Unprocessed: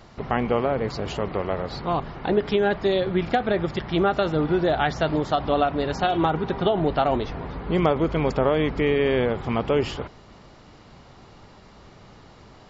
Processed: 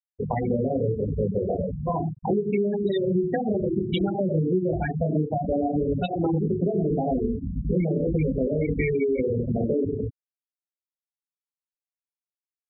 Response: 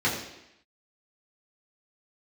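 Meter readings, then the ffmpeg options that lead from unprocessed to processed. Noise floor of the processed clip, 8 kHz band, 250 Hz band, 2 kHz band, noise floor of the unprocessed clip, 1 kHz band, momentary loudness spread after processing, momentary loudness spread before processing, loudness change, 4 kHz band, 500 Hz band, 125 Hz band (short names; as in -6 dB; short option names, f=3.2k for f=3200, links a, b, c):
under -85 dBFS, n/a, +1.0 dB, -9.0 dB, -49 dBFS, -8.0 dB, 4 LU, 6 LU, -2.0 dB, -10.5 dB, -2.5 dB, +2.0 dB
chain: -filter_complex "[0:a]adynamicequalizer=threshold=0.0158:dfrequency=890:dqfactor=1.4:tfrequency=890:tqfactor=1.4:attack=5:release=100:ratio=0.375:range=2:mode=cutabove:tftype=bell,acrossover=split=240[a][b];[a]acrusher=samples=11:mix=1:aa=0.000001:lfo=1:lforange=6.6:lforate=0.25[c];[c][b]amix=inputs=2:normalize=0,flanger=delay=18.5:depth=6.3:speed=1.7,highshelf=f=1.8k:t=q:w=1.5:g=8.5,afwtdn=0.0398,asplit=2[d][e];[1:a]atrim=start_sample=2205,afade=t=out:st=0.22:d=0.01,atrim=end_sample=10143[f];[e][f]afir=irnorm=-1:irlink=0,volume=-14.5dB[g];[d][g]amix=inputs=2:normalize=0,acrossover=split=350|3000[h][i][j];[i]acompressor=threshold=-28dB:ratio=6[k];[h][k][j]amix=inputs=3:normalize=0,asplit=2[l][m];[m]adelay=344,volume=-22dB,highshelf=f=4k:g=-7.74[n];[l][n]amix=inputs=2:normalize=0,acompressor=threshold=-26dB:ratio=6,afftfilt=real='re*gte(hypot(re,im),0.0891)':imag='im*gte(hypot(re,im),0.0891)':win_size=1024:overlap=0.75,volume=6.5dB"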